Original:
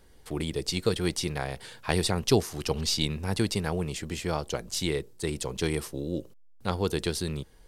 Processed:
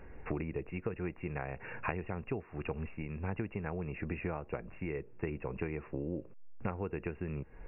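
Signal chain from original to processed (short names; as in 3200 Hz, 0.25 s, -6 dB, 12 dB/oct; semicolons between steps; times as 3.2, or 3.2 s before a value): compressor 16:1, threshold -40 dBFS, peak gain reduction 24 dB; brick-wall FIR low-pass 2800 Hz; gain +7.5 dB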